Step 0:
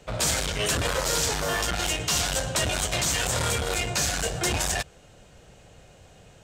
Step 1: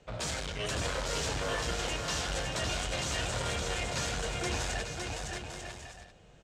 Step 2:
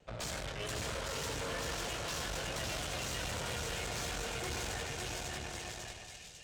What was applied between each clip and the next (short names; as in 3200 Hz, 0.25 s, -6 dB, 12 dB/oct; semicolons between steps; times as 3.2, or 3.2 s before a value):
air absorption 63 m; bouncing-ball echo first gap 0.56 s, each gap 0.6×, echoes 5; gain -8 dB
vibrato 3.2 Hz 51 cents; split-band echo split 2300 Hz, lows 0.125 s, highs 0.547 s, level -4 dB; tube stage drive 35 dB, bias 0.75